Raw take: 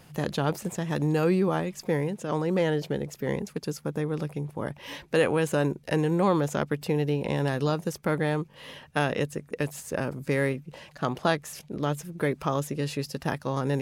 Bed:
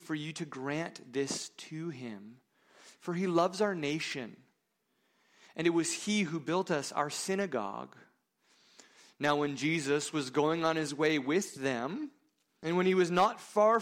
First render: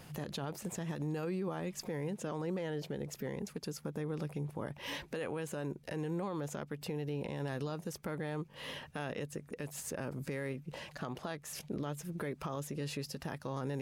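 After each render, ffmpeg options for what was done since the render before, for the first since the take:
-af "acompressor=threshold=-35dB:ratio=3,alimiter=level_in=5.5dB:limit=-24dB:level=0:latency=1:release=49,volume=-5.5dB"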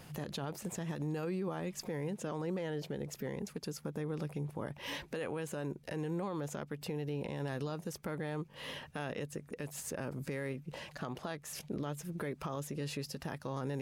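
-af anull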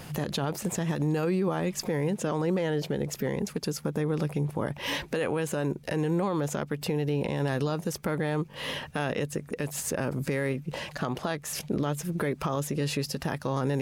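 -af "volume=10dB"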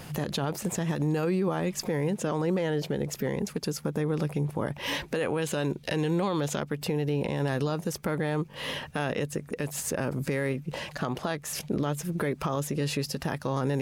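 -filter_complex "[0:a]asettb=1/sr,asplit=3[a][b][c];[a]atrim=end=5.424[d];[b]atrim=start=5.42:end=6.6,asetpts=PTS-STARTPTS,afade=t=in:d=0.004:c=qsin,afade=t=out:st=1.176:d=0.004:c=qsin,equalizer=f=3.6k:t=o:w=1.1:g=9[e];[c]atrim=start=6.596[f];[d][e]acrossfade=d=0.004:c1=hsin:c2=qsin[g];[g][f]acrossfade=d=0.004:c1=qsin:c2=hsin"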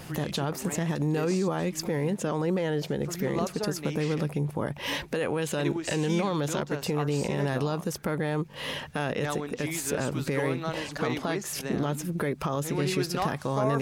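-filter_complex "[1:a]volume=-4dB[a];[0:a][a]amix=inputs=2:normalize=0"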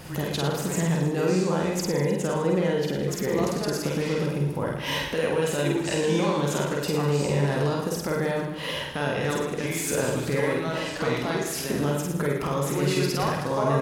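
-filter_complex "[0:a]asplit=2[a][b];[b]adelay=48,volume=-4dB[c];[a][c]amix=inputs=2:normalize=0,asplit=2[d][e];[e]aecho=0:1:50|115|199.5|309.4|452.2:0.631|0.398|0.251|0.158|0.1[f];[d][f]amix=inputs=2:normalize=0"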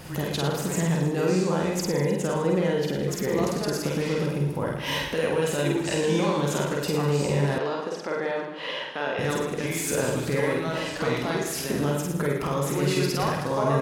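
-filter_complex "[0:a]asettb=1/sr,asplit=3[a][b][c];[a]atrim=end=7.584[d];[b]atrim=start=7.58:end=9.19,asetpts=PTS-STARTPTS,afade=t=in:d=0.004:c=qsin,afade=t=out:st=1.606:d=0.004:c=qsin,highpass=350,lowpass=4k[e];[c]atrim=start=9.186[f];[d][e]acrossfade=d=0.004:c1=hsin:c2=qsin[g];[g][f]acrossfade=d=0.004:c1=qsin:c2=hsin"

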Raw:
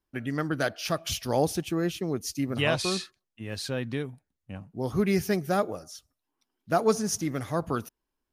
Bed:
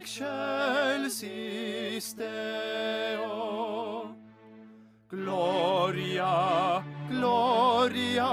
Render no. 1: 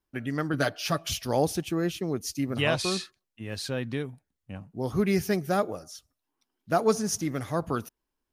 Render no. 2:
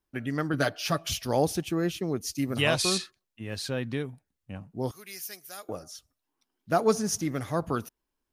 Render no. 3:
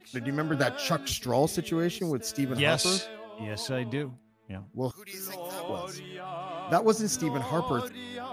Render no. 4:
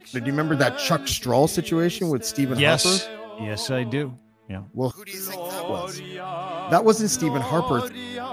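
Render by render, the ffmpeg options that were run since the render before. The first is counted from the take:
-filter_complex "[0:a]asettb=1/sr,asplit=3[a][b][c];[a]atrim=end=0.534[d];[b]atrim=start=0.53:end=1.06,asetpts=PTS-STARTPTS,afade=t=in:d=0.004:c=qsin,afade=t=out:st=0.526:d=0.004:c=qsin,aecho=1:1:7:0.65,atrim=end_sample=23373[e];[c]atrim=start=1.056[f];[d][e]acrossfade=d=0.004:c1=hsin:c2=qsin[g];[g][f]acrossfade=d=0.004:c1=qsin:c2=hsin"
-filter_complex "[0:a]asettb=1/sr,asplit=3[a][b][c];[a]atrim=end=2.384[d];[b]atrim=start=2.38:end=2.98,asetpts=PTS-STARTPTS,afade=t=in:d=0.004:c=qsin,afade=t=out:st=0.596:d=0.004:c=qsin,highshelf=f=5k:g=9[e];[c]atrim=start=2.976[f];[d][e]acrossfade=d=0.004:c1=hsin:c2=qsin[g];[g][f]acrossfade=d=0.004:c1=qsin:c2=hsin,asettb=1/sr,asplit=3[h][i][j];[h]atrim=end=4.914[k];[i]atrim=start=4.91:end=5.69,asetpts=PTS-STARTPTS,afade=t=in:d=0.004:c=qsin,afade=t=out:st=0.776:d=0.004:c=qsin,aderivative[l];[j]atrim=start=5.686[m];[k][l]acrossfade=d=0.004:c1=hsin:c2=qsin[n];[n][m]acrossfade=d=0.004:c1=qsin:c2=hsin"
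-filter_complex "[1:a]volume=-11.5dB[a];[0:a][a]amix=inputs=2:normalize=0"
-af "volume=6.5dB"

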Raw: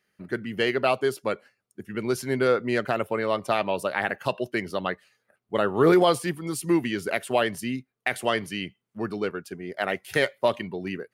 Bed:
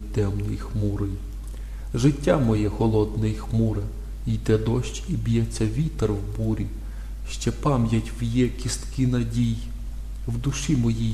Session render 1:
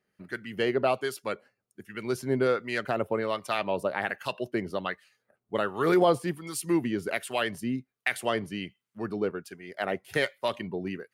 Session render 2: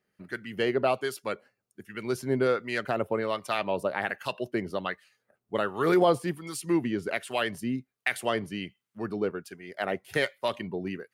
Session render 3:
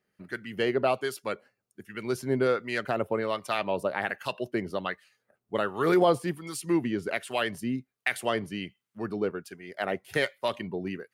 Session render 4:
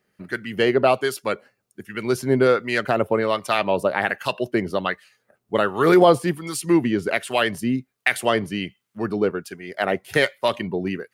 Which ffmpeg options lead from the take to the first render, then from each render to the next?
-filter_complex "[0:a]acrossover=split=1100[a][b];[a]aeval=exprs='val(0)*(1-0.7/2+0.7/2*cos(2*PI*1.3*n/s))':c=same[c];[b]aeval=exprs='val(0)*(1-0.7/2-0.7/2*cos(2*PI*1.3*n/s))':c=same[d];[c][d]amix=inputs=2:normalize=0"
-filter_complex "[0:a]asettb=1/sr,asplit=3[a][b][c];[a]atrim=end=6.564[d];[b]atrim=start=6.56:end=7.28,asetpts=PTS-STARTPTS,afade=t=in:d=0.004:c=qsin,afade=t=out:st=0.716:d=0.004:c=qsin,highshelf=f=11k:g=-11[e];[c]atrim=start=7.276[f];[d][e]acrossfade=d=0.004:c1=hsin:c2=qsin[g];[g][f]acrossfade=d=0.004:c1=qsin:c2=hsin"
-af anull
-af "volume=8dB"

